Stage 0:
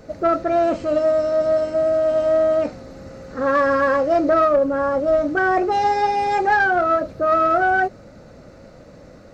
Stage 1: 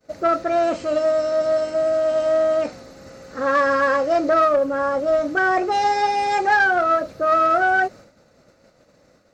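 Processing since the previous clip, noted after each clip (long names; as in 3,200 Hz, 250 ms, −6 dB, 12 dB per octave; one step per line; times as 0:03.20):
downward expander −35 dBFS
spectral tilt +2 dB per octave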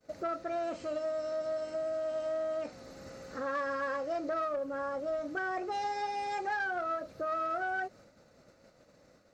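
downward compressor 2 to 1, threshold −34 dBFS, peak gain reduction 11.5 dB
level −6 dB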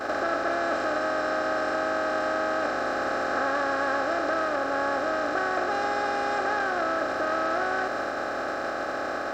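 compressor on every frequency bin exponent 0.2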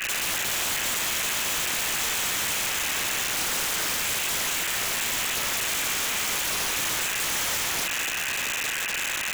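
voice inversion scrambler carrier 3,200 Hz
wrap-around overflow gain 24.5 dB
level +2.5 dB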